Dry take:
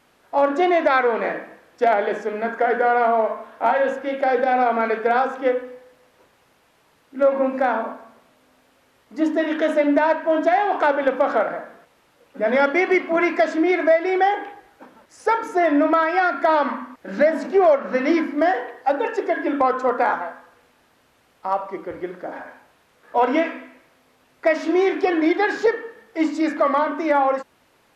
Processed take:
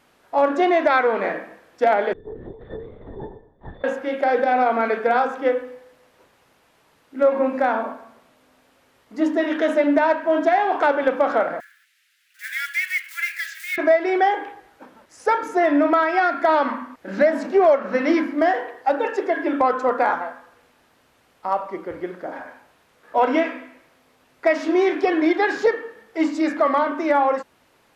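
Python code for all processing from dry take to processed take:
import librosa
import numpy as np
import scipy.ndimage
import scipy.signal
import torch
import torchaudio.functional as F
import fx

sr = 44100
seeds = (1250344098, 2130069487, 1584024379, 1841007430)

y = fx.chain(x, sr, fx.lower_of_two(delay_ms=0.36),
    fx.octave_resonator(note='A', decay_s=0.42),
    fx.lpc_vocoder(seeds[0], excitation='whisper', order=8), at=(2.13, 3.84))
y = fx.chain(y, sr, fx.block_float(bits=5),
    fx.steep_highpass(hz=1600.0, slope=48), at=(11.6, 13.78))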